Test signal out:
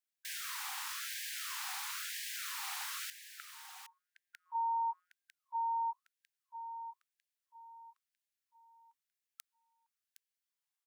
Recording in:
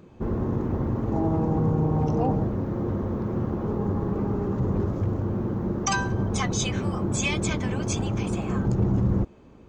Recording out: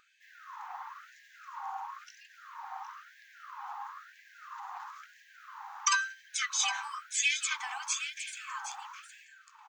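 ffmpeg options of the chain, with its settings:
ffmpeg -i in.wav -af "equalizer=frequency=210:width_type=o:width=1.1:gain=13,aecho=1:1:764:0.299,afftfilt=real='re*lt(hypot(re,im),0.794)':imag='im*lt(hypot(re,im),0.794)':win_size=1024:overlap=0.75,afftfilt=real='re*gte(b*sr/1024,720*pow(1600/720,0.5+0.5*sin(2*PI*1*pts/sr)))':imag='im*gte(b*sr/1024,720*pow(1600/720,0.5+0.5*sin(2*PI*1*pts/sr)))':win_size=1024:overlap=0.75" out.wav

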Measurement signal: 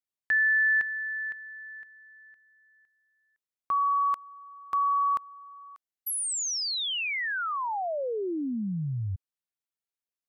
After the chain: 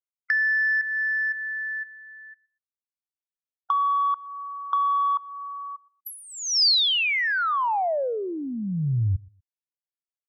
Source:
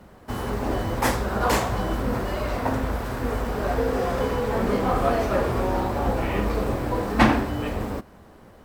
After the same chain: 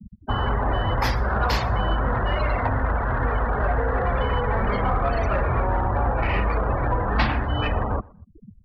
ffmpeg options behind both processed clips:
ffmpeg -i in.wav -filter_complex "[0:a]afftfilt=real='re*gte(hypot(re,im),0.0251)':imag='im*gte(hypot(re,im),0.0251)':win_size=1024:overlap=0.75,aexciter=amount=4.4:drive=8:freq=12000,acrossover=split=130|650[link_01][link_02][link_03];[link_01]acompressor=threshold=-33dB:ratio=4[link_04];[link_02]acompressor=threshold=-49dB:ratio=4[link_05];[link_03]acompressor=threshold=-37dB:ratio=4[link_06];[link_04][link_05][link_06]amix=inputs=3:normalize=0,asplit=2[link_07][link_08];[link_08]asoftclip=type=tanh:threshold=-28.5dB,volume=-3dB[link_09];[link_07][link_09]amix=inputs=2:normalize=0,highshelf=frequency=6500:width_type=q:width=3:gain=-11,asplit=2[link_10][link_11];[link_11]aecho=0:1:121|242:0.0631|0.0145[link_12];[link_10][link_12]amix=inputs=2:normalize=0,volume=7.5dB" out.wav

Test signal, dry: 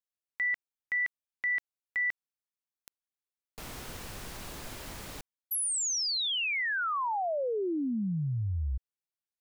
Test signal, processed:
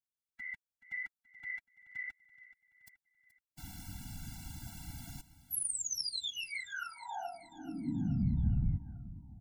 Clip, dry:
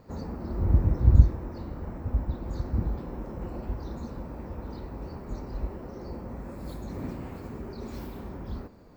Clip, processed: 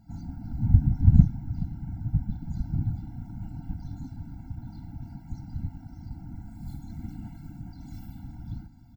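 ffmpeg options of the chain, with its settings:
ffmpeg -i in.wav -filter_complex "[0:a]bass=frequency=250:gain=10,treble=frequency=4000:gain=8,afftfilt=real='hypot(re,im)*cos(2*PI*random(0))':imag='hypot(re,im)*sin(2*PI*random(1))':win_size=512:overlap=0.75,asplit=2[link_01][link_02];[link_02]aecho=0:1:427|854|1281|1708|2135:0.15|0.0778|0.0405|0.021|0.0109[link_03];[link_01][link_03]amix=inputs=2:normalize=0,afftfilt=real='re*eq(mod(floor(b*sr/1024/330),2),0)':imag='im*eq(mod(floor(b*sr/1024/330),2),0)':win_size=1024:overlap=0.75,volume=-3dB" out.wav

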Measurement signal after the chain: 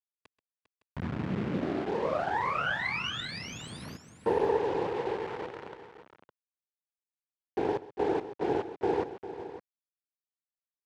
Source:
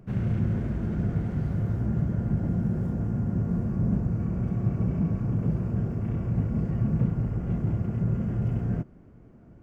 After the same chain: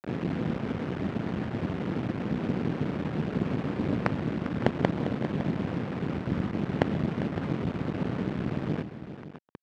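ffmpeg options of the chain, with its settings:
ffmpeg -i in.wav -filter_complex "[0:a]bandreject=frequency=370:width=12,asplit=2[link_01][link_02];[link_02]acompressor=threshold=-34dB:ratio=20,volume=1dB[link_03];[link_01][link_03]amix=inputs=2:normalize=0,afftfilt=real='hypot(re,im)*cos(2*PI*random(0))':imag='hypot(re,im)*sin(2*PI*random(1))':win_size=512:overlap=0.75,acrusher=bits=4:dc=4:mix=0:aa=0.000001,highpass=140,lowpass=2400,aecho=1:1:132|400|560:0.126|0.237|0.2,volume=7dB" out.wav

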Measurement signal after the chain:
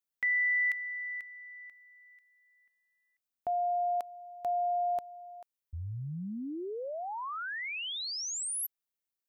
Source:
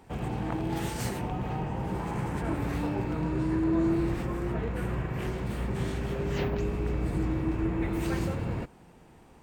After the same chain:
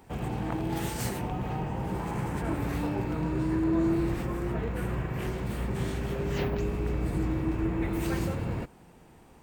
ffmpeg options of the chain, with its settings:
ffmpeg -i in.wav -af "highshelf=frequency=12000:gain=8.5" out.wav

